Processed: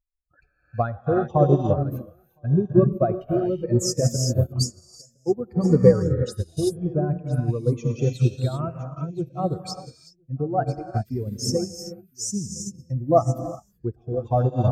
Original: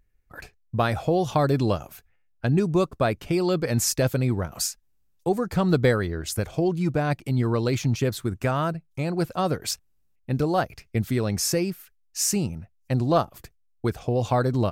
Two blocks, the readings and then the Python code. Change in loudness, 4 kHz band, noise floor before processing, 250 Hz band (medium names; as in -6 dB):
+1.5 dB, -2.0 dB, -65 dBFS, +0.5 dB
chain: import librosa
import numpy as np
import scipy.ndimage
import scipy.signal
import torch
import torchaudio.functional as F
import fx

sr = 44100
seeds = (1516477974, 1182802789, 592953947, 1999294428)

y = fx.spec_expand(x, sr, power=2.3)
y = y + 10.0 ** (-20.0 / 20.0) * np.pad(y, (int(1012 * sr / 1000.0), 0))[:len(y)]
y = fx.rev_gated(y, sr, seeds[0], gate_ms=410, shape='rising', drr_db=2.0)
y = fx.upward_expand(y, sr, threshold_db=-33.0, expansion=2.5)
y = y * librosa.db_to_amplitude(7.5)